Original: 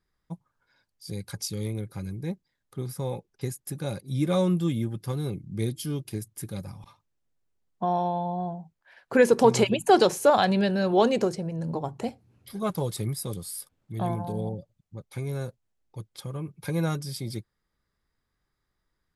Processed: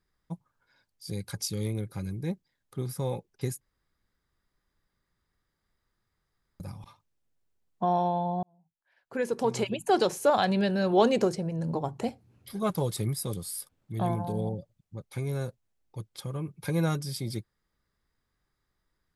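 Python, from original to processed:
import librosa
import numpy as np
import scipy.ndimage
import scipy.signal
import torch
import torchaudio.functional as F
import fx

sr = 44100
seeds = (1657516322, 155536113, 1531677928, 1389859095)

y = fx.edit(x, sr, fx.room_tone_fill(start_s=3.61, length_s=2.99),
    fx.fade_in_span(start_s=8.43, length_s=2.87), tone=tone)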